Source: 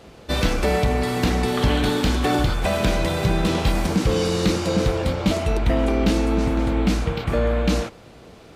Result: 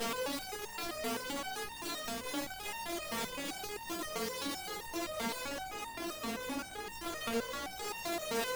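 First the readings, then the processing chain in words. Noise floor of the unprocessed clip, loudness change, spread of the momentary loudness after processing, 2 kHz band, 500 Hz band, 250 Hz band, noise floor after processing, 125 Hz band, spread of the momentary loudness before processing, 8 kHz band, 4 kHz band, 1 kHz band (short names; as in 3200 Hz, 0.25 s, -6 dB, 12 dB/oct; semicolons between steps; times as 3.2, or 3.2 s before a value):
-46 dBFS, -17.0 dB, 4 LU, -12.0 dB, -17.0 dB, -20.5 dB, -46 dBFS, -33.0 dB, 3 LU, -7.0 dB, -11.5 dB, -13.0 dB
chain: infinite clipping; HPF 120 Hz 12 dB/oct; in parallel at +2 dB: limiter -24.5 dBFS, peak gain reduction 11.5 dB; on the sum: one-sided clip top -27 dBFS; stepped resonator 7.7 Hz 230–920 Hz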